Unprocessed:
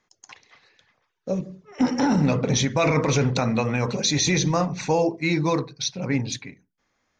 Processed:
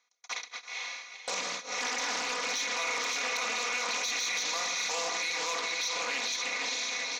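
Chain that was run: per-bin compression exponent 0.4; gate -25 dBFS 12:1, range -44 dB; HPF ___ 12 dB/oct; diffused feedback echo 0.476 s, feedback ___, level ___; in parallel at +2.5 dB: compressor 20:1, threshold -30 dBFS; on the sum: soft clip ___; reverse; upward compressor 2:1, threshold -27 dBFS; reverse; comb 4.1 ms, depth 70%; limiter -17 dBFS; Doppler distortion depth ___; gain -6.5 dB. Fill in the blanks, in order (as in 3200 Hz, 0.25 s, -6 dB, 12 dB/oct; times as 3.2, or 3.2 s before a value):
1300 Hz, 45%, -6 dB, -10 dBFS, 0.18 ms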